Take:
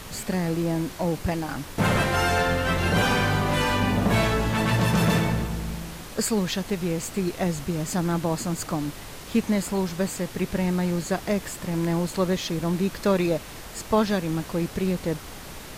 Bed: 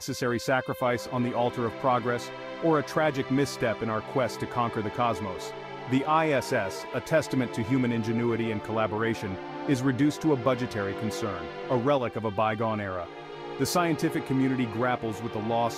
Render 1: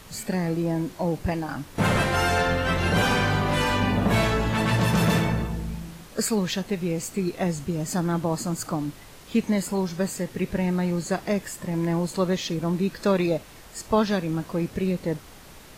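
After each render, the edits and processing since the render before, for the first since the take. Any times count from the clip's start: noise print and reduce 7 dB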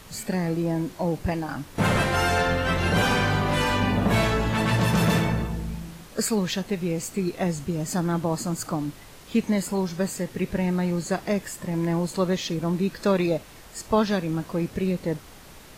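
nothing audible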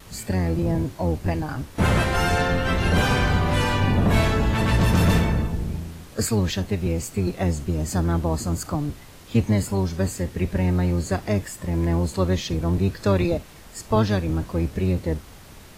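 octaver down 1 oct, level +2 dB; vibrato 0.46 Hz 13 cents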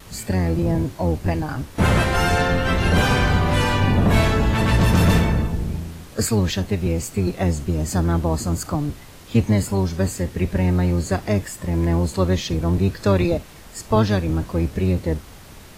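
gain +2.5 dB

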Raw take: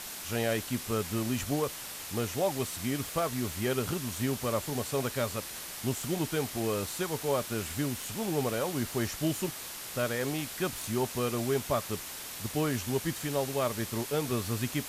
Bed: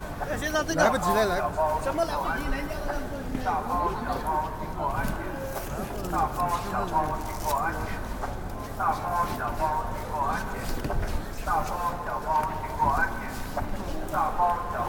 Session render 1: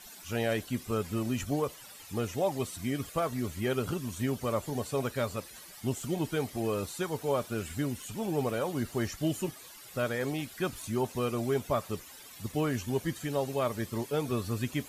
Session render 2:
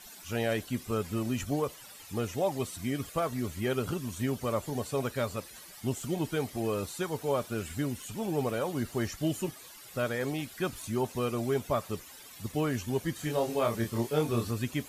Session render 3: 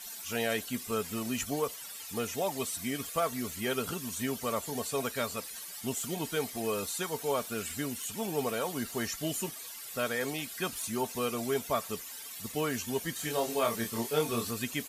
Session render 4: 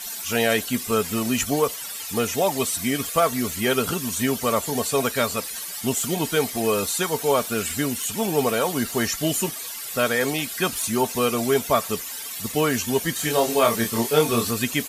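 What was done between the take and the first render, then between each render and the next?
denoiser 14 dB, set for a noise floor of -42 dBFS
13.16–14.51 doubler 26 ms -3 dB
tilt +2 dB/oct; comb 4.4 ms, depth 32%
gain +10.5 dB

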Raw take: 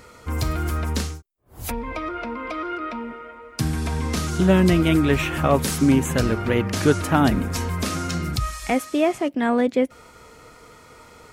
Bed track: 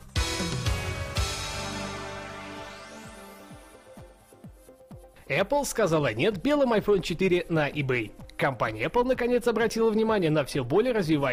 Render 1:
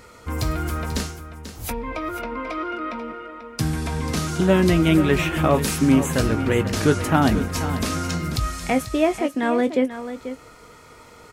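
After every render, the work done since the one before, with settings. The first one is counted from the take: doubler 19 ms -11.5 dB; echo 0.489 s -11.5 dB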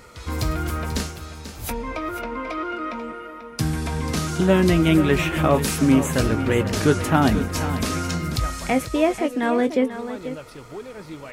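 add bed track -13 dB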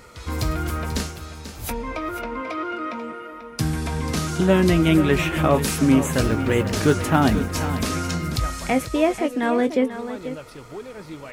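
2.41–3.32 HPF 76 Hz 24 dB/oct; 6.14–7.89 block floating point 7-bit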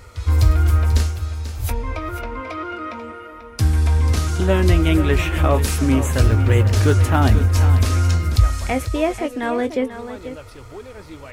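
resonant low shelf 120 Hz +8.5 dB, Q 3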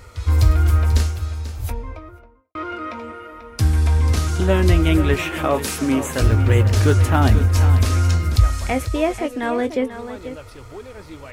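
1.24–2.55 studio fade out; 5.15–6.22 HPF 180 Hz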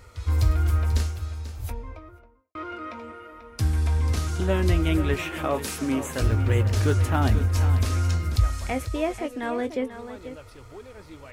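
gain -6.5 dB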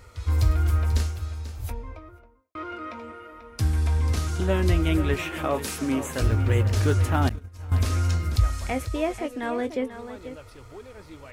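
7.29–7.72 expander -10 dBFS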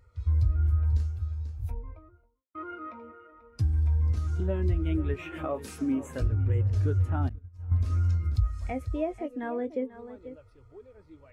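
compressor 2.5:1, threshold -27 dBFS, peak gain reduction 8.5 dB; spectral expander 1.5:1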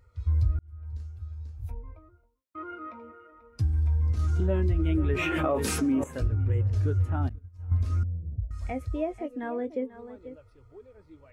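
0.59–2.69 fade in equal-power; 4.19–6.04 fast leveller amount 70%; 8.03–8.51 rippled Chebyshev low-pass 690 Hz, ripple 9 dB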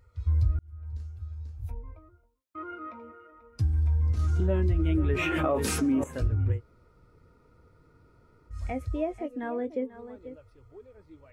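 6.56–8.52 room tone, crossfade 0.10 s

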